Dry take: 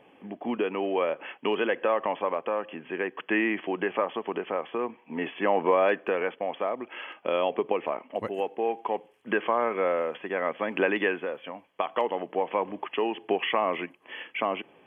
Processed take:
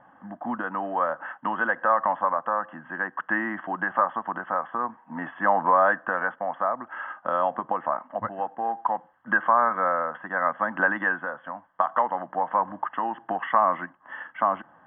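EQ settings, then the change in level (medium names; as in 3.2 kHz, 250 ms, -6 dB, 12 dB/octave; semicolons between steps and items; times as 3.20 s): resonant low-pass 1.6 kHz, resonance Q 3; static phaser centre 1 kHz, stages 4; +4.0 dB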